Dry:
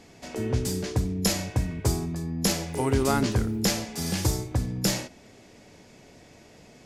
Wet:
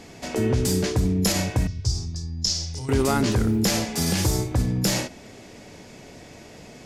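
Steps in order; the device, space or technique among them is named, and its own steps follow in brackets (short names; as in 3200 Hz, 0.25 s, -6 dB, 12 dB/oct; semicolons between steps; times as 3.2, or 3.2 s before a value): clipper into limiter (hard clip -14.5 dBFS, distortion -29 dB; limiter -20.5 dBFS, peak gain reduction 6 dB); 1.67–2.89 EQ curve 120 Hz 0 dB, 170 Hz -15 dB, 510 Hz -20 dB, 2400 Hz -16 dB, 5400 Hz +7 dB, 12000 Hz -23 dB; gain +7.5 dB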